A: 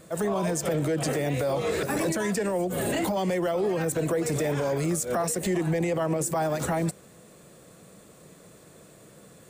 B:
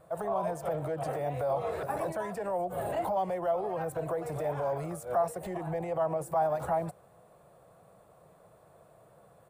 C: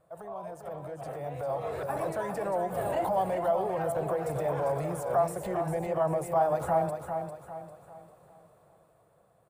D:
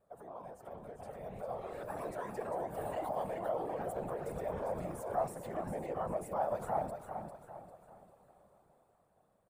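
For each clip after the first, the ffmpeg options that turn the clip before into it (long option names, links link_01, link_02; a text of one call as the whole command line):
ffmpeg -i in.wav -af "firequalizer=gain_entry='entry(120,0);entry(240,-11);entry(700,9);entry(1900,-7);entry(6800,-17);entry(10000,-7)':delay=0.05:min_phase=1,volume=-6.5dB" out.wav
ffmpeg -i in.wav -filter_complex "[0:a]dynaudnorm=framelen=290:gausssize=11:maxgain=11dB,asplit=2[link_01][link_02];[link_02]aecho=0:1:399|798|1197|1596|1995:0.447|0.174|0.0679|0.0265|0.0103[link_03];[link_01][link_03]amix=inputs=2:normalize=0,volume=-9dB" out.wav
ffmpeg -i in.wav -filter_complex "[0:a]asplit=2[link_01][link_02];[link_02]adelay=605,lowpass=frequency=2000:poles=1,volume=-23.5dB,asplit=2[link_03][link_04];[link_04]adelay=605,lowpass=frequency=2000:poles=1,volume=0.54,asplit=2[link_05][link_06];[link_06]adelay=605,lowpass=frequency=2000:poles=1,volume=0.54,asplit=2[link_07][link_08];[link_08]adelay=605,lowpass=frequency=2000:poles=1,volume=0.54[link_09];[link_01][link_03][link_05][link_07][link_09]amix=inputs=5:normalize=0,afftfilt=real='hypot(re,im)*cos(2*PI*random(0))':imag='hypot(re,im)*sin(2*PI*random(1))':win_size=512:overlap=0.75,volume=-2.5dB" out.wav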